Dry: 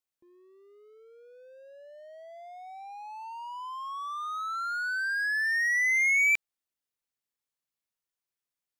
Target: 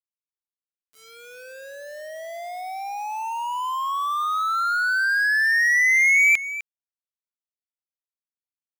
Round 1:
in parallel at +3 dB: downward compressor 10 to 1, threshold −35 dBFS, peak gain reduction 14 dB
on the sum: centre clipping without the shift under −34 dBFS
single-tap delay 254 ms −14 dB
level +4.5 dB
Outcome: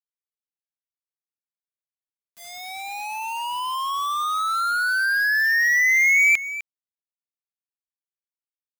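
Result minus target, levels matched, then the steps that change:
centre clipping without the shift: distortion +9 dB
change: centre clipping without the shift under −42.5 dBFS

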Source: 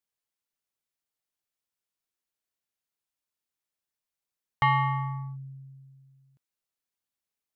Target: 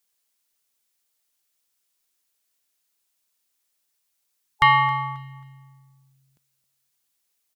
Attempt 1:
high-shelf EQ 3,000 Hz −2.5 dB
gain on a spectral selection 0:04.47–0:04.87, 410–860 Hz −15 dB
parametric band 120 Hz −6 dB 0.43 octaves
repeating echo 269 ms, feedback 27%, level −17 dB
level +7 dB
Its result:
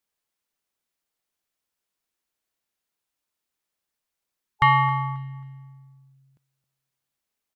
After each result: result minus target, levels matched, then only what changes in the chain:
125 Hz band +7.0 dB; 4,000 Hz band −4.0 dB
change: parametric band 120 Hz −15 dB 0.43 octaves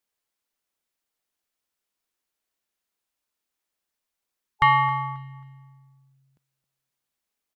4,000 Hz band −4.0 dB
change: high-shelf EQ 3,000 Hz +9.5 dB

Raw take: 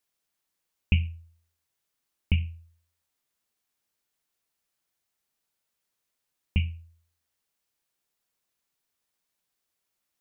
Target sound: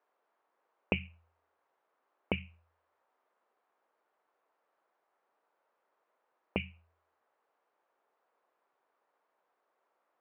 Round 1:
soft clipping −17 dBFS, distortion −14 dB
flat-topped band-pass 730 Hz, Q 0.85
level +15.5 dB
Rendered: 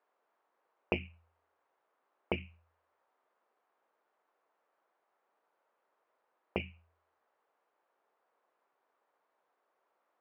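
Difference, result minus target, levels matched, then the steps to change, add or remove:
soft clipping: distortion +15 dB
change: soft clipping −6.5 dBFS, distortion −29 dB

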